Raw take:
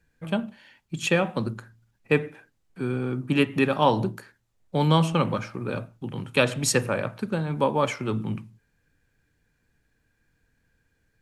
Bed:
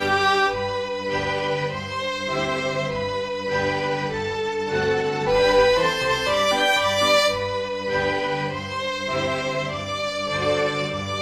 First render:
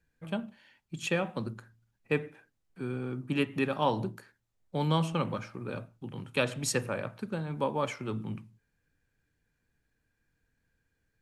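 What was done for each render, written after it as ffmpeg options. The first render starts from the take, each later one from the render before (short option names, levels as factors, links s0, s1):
-af "volume=0.422"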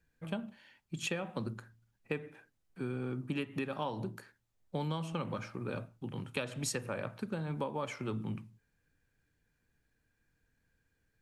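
-af "acompressor=threshold=0.0251:ratio=12"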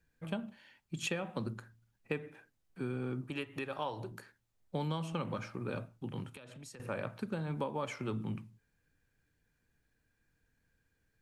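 -filter_complex "[0:a]asettb=1/sr,asplit=3[s0][s1][s2];[s0]atrim=end=3.244[s3];[s1]atrim=start=3.24:end=4.12,asetpts=PTS-STARTPTS,afade=t=in:d=0.004:c=qsin,afade=t=out:st=0.876:d=0.004:c=qsin,equalizer=f=200:t=o:w=0.77:g=-13.5[s4];[s2]atrim=start=4.116[s5];[s3][s4]acrossfade=d=0.004:c1=hsin:c2=qsin[s6];[s6][s5]acrossfade=d=0.004:c1=qsin:c2=hsin,asettb=1/sr,asplit=3[s7][s8][s9];[s7]atrim=end=6.294[s10];[s8]atrim=start=6.29:end=6.8,asetpts=PTS-STARTPTS,afade=t=in:d=0.004:c=qsin,afade=t=out:st=0.506:d=0.004:c=qsin,acompressor=threshold=0.00355:ratio=5:attack=3.2:release=140:knee=1:detection=peak[s11];[s9]atrim=start=6.796[s12];[s10][s11]acrossfade=d=0.004:c1=hsin:c2=qsin[s13];[s13][s12]acrossfade=d=0.004:c1=qsin:c2=hsin"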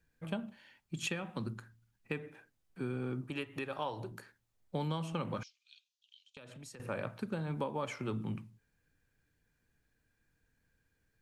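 -filter_complex "[0:a]asettb=1/sr,asplit=3[s0][s1][s2];[s0]atrim=end=1.074[s3];[s1]atrim=start=1.07:end=2.17,asetpts=PTS-STARTPTS,afade=t=in:d=0.004:c=qsin,afade=t=out:st=1.096:d=0.004:c=qsin,equalizer=f=570:w=1.4:g=-5.5[s4];[s2]atrim=start=2.166[s5];[s3][s4]acrossfade=d=0.004:c1=hsin:c2=qsin[s6];[s6][s5]acrossfade=d=0.004:c1=qsin:c2=hsin,asettb=1/sr,asplit=3[s7][s8][s9];[s7]atrim=end=5.434[s10];[s8]atrim=start=5.43:end=6.37,asetpts=PTS-STARTPTS,afade=t=in:d=0.004:c=qsin,afade=t=out:st=0.936:d=0.004:c=qsin,asuperpass=centerf=4600:order=8:qfactor=1.2[s11];[s9]atrim=start=6.366[s12];[s10][s11]acrossfade=d=0.004:c1=hsin:c2=qsin[s13];[s13][s12]acrossfade=d=0.004:c1=qsin:c2=hsin"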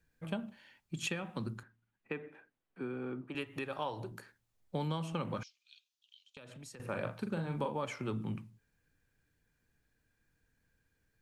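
-filter_complex "[0:a]asettb=1/sr,asplit=3[s0][s1][s2];[s0]atrim=end=1.634[s3];[s1]atrim=start=1.63:end=3.35,asetpts=PTS-STARTPTS,afade=t=in:d=0.004:c=qsin,afade=t=out:st=1.716:d=0.004:c=qsin,acrossover=split=190 3100:gain=0.224 1 0.178[s4][s5][s6];[s4][s5][s6]amix=inputs=3:normalize=0[s7];[s2]atrim=start=3.346[s8];[s3][s7]acrossfade=d=0.004:c1=hsin:c2=qsin[s9];[s9][s8]acrossfade=d=0.004:c1=qsin:c2=hsin,asettb=1/sr,asplit=3[s10][s11][s12];[s10]atrim=end=6.854[s13];[s11]atrim=start=6.85:end=7.75,asetpts=PTS-STARTPTS,afade=t=in:d=0.004:c=qsin,afade=t=out:st=0.896:d=0.004:c=qsin,asplit=2[s14][s15];[s15]adelay=42,volume=0.447[s16];[s14][s16]amix=inputs=2:normalize=0,atrim=end_sample=39690[s17];[s12]atrim=start=7.746[s18];[s13][s17]acrossfade=d=0.004:c1=hsin:c2=qsin[s19];[s19][s18]acrossfade=d=0.004:c1=qsin:c2=hsin"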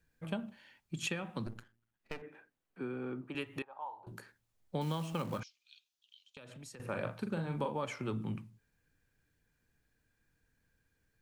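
-filter_complex "[0:a]asettb=1/sr,asplit=3[s0][s1][s2];[s0]atrim=end=1.464[s3];[s1]atrim=start=1.46:end=2.22,asetpts=PTS-STARTPTS,afade=t=in:d=0.004:c=qsin,afade=t=out:st=0.756:d=0.004:c=qsin,aeval=exprs='max(val(0),0)':c=same[s4];[s2]atrim=start=2.216[s5];[s3][s4]acrossfade=d=0.004:c1=hsin:c2=qsin[s6];[s6][s5]acrossfade=d=0.004:c1=qsin:c2=hsin,asettb=1/sr,asplit=3[s7][s8][s9];[s7]atrim=end=3.624[s10];[s8]atrim=start=3.62:end=4.07,asetpts=PTS-STARTPTS,afade=t=in:d=0.004:c=qsin,afade=t=out:st=0.446:d=0.004:c=qsin,bandpass=f=870:t=q:w=5.7[s11];[s9]atrim=start=4.066[s12];[s10][s11]acrossfade=d=0.004:c1=hsin:c2=qsin[s13];[s13][s12]acrossfade=d=0.004:c1=qsin:c2=hsin,asettb=1/sr,asplit=3[s14][s15][s16];[s14]atrim=end=4.814[s17];[s15]atrim=start=4.81:end=5.4,asetpts=PTS-STARTPTS,afade=t=in:d=0.004:c=qsin,afade=t=out:st=0.586:d=0.004:c=qsin,acrusher=bits=5:mode=log:mix=0:aa=0.000001[s18];[s16]atrim=start=5.396[s19];[s17][s18]acrossfade=d=0.004:c1=hsin:c2=qsin[s20];[s20][s19]acrossfade=d=0.004:c1=qsin:c2=hsin"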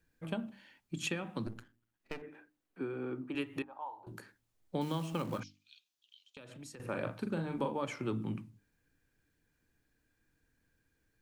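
-af "equalizer=f=300:w=2.9:g=6.5,bandreject=f=50:t=h:w=6,bandreject=f=100:t=h:w=6,bandreject=f=150:t=h:w=6,bandreject=f=200:t=h:w=6,bandreject=f=250:t=h:w=6,bandreject=f=300:t=h:w=6"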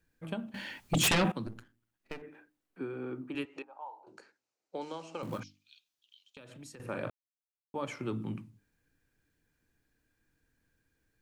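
-filter_complex "[0:a]asettb=1/sr,asplit=3[s0][s1][s2];[s0]atrim=end=0.544[s3];[s1]atrim=start=0.54:end=1.32,asetpts=PTS-STARTPTS,afade=t=in:d=0.004:c=qsin,afade=t=out:st=0.776:d=0.004:c=qsin,aeval=exprs='0.0794*sin(PI/2*5.01*val(0)/0.0794)':c=same[s4];[s2]atrim=start=1.316[s5];[s3][s4]acrossfade=d=0.004:c1=hsin:c2=qsin[s6];[s6][s5]acrossfade=d=0.004:c1=qsin:c2=hsin,asettb=1/sr,asplit=3[s7][s8][s9];[s7]atrim=end=3.454[s10];[s8]atrim=start=3.45:end=5.23,asetpts=PTS-STARTPTS,afade=t=in:d=0.004:c=qsin,afade=t=out:st=1.776:d=0.004:c=qsin,highpass=450,equalizer=f=470:t=q:w=4:g=3,equalizer=f=1100:t=q:w=4:g=-4,equalizer=f=1800:t=q:w=4:g=-7,equalizer=f=3400:t=q:w=4:g=-8,lowpass=f=7000:w=0.5412,lowpass=f=7000:w=1.3066[s11];[s9]atrim=start=5.226[s12];[s10][s11]acrossfade=d=0.004:c1=hsin:c2=qsin[s13];[s13][s12]acrossfade=d=0.004:c1=qsin:c2=hsin,asplit=3[s14][s15][s16];[s14]atrim=end=7.1,asetpts=PTS-STARTPTS,afade=t=out:st=7.096:d=0.004:c=hsin[s17];[s15]atrim=start=7.1:end=7.74,asetpts=PTS-STARTPTS,volume=0[s18];[s16]atrim=start=7.74,asetpts=PTS-STARTPTS,afade=t=in:d=0.004:c=hsin[s19];[s17][s18][s19]concat=n=3:v=0:a=1"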